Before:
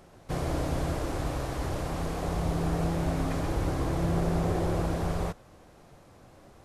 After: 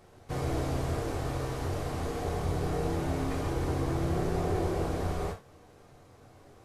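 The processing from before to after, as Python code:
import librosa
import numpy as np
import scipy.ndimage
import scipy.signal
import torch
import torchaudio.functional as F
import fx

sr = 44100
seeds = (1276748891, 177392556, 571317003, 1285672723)

y = fx.rev_gated(x, sr, seeds[0], gate_ms=110, shape='falling', drr_db=0.0)
y = y * librosa.db_to_amplitude(-4.5)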